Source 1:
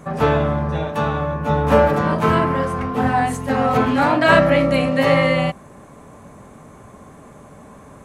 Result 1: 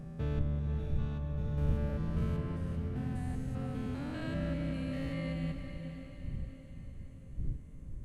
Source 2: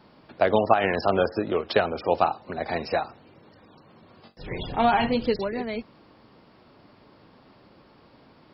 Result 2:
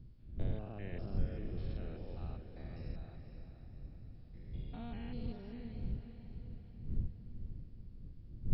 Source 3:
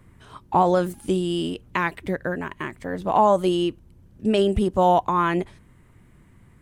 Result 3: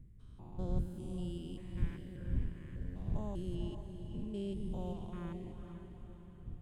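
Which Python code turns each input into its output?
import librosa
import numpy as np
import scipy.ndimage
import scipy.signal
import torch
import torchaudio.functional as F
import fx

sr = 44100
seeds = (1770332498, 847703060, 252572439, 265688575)

p1 = fx.spec_steps(x, sr, hold_ms=200)
p2 = fx.dmg_wind(p1, sr, seeds[0], corner_hz=180.0, level_db=-34.0)
p3 = fx.tone_stack(p2, sr, knobs='10-0-1')
p4 = p3 + fx.echo_diffused(p3, sr, ms=481, feedback_pct=50, wet_db=-8.0, dry=0)
y = F.gain(torch.from_numpy(p4), 1.0).numpy()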